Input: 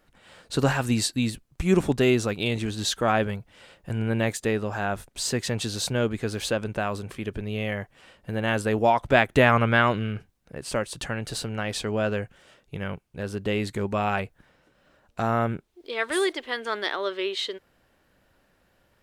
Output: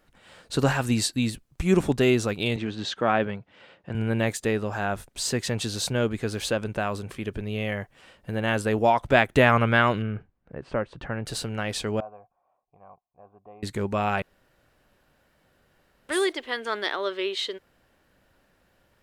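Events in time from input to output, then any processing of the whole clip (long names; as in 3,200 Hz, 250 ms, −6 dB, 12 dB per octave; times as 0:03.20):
0:02.56–0:03.95: band-pass filter 130–3,500 Hz
0:10.02–0:11.26: low-pass filter 1,700 Hz
0:12.00–0:13.63: formant resonators in series a
0:14.22–0:16.09: fill with room tone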